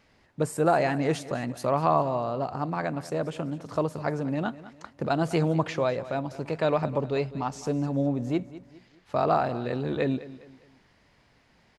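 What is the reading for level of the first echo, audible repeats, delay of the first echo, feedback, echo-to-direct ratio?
-16.5 dB, 3, 204 ms, 38%, -16.0 dB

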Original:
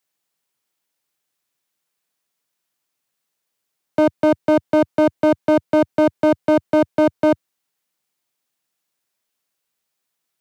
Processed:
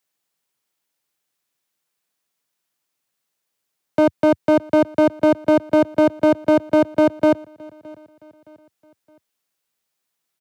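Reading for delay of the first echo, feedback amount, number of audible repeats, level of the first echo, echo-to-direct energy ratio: 617 ms, 43%, 2, -24.0 dB, -23.0 dB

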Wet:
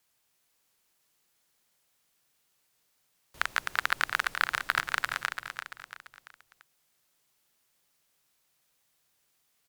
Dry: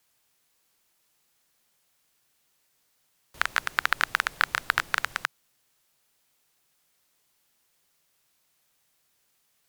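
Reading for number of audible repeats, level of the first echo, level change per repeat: 4, -7.0 dB, -7.0 dB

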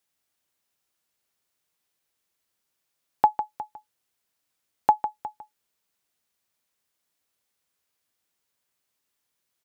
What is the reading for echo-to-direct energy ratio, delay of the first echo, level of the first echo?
-10.5 dB, 152 ms, -10.5 dB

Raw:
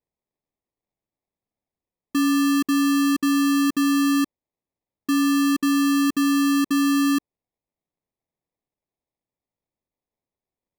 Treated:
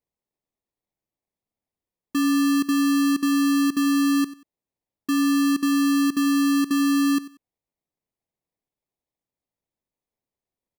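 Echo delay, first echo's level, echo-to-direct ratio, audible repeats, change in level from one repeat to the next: 93 ms, -17.5 dB, -17.5 dB, 2, -12.0 dB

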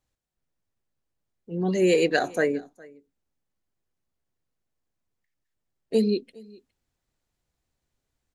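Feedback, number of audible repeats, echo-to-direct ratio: no regular repeats, 1, -24.0 dB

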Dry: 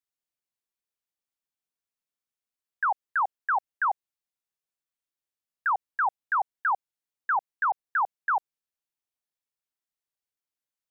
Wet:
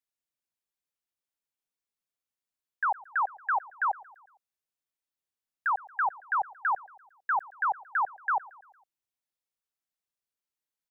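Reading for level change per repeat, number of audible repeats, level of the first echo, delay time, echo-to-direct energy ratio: -5.5 dB, 3, -21.5 dB, 114 ms, -20.0 dB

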